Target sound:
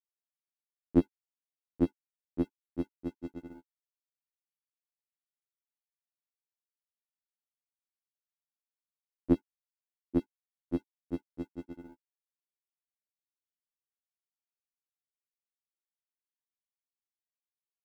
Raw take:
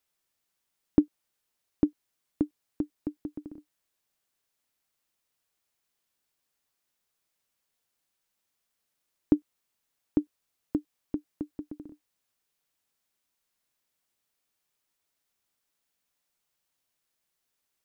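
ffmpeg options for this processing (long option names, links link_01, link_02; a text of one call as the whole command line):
ffmpeg -i in.wav -af "aeval=exprs='sgn(val(0))*max(abs(val(0))-0.00316,0)':channel_layout=same,afftfilt=real='re*2*eq(mod(b,4),0)':imag='im*2*eq(mod(b,4),0)':win_size=2048:overlap=0.75,volume=4.5dB" out.wav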